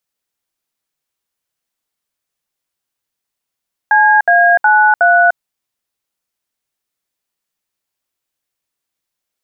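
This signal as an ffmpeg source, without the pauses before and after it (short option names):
-f lavfi -i "aevalsrc='0.355*clip(min(mod(t,0.366),0.298-mod(t,0.366))/0.002,0,1)*(eq(floor(t/0.366),0)*(sin(2*PI*852*mod(t,0.366))+sin(2*PI*1633*mod(t,0.366)))+eq(floor(t/0.366),1)*(sin(2*PI*697*mod(t,0.366))+sin(2*PI*1633*mod(t,0.366)))+eq(floor(t/0.366),2)*(sin(2*PI*852*mod(t,0.366))+sin(2*PI*1477*mod(t,0.366)))+eq(floor(t/0.366),3)*(sin(2*PI*697*mod(t,0.366))+sin(2*PI*1477*mod(t,0.366))))':d=1.464:s=44100"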